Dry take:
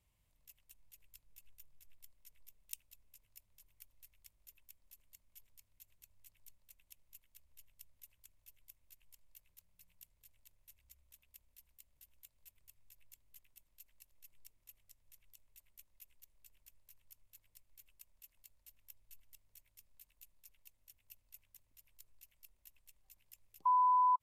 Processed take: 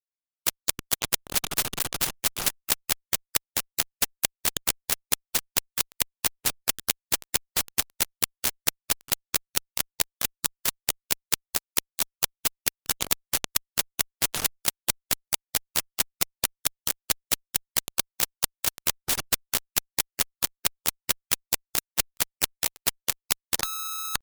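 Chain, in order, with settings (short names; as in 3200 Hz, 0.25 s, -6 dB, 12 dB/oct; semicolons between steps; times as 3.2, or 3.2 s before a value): median filter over 3 samples; pitch shift +4.5 st; fuzz box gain 64 dB, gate -58 dBFS; spectral compressor 4:1; gain +6 dB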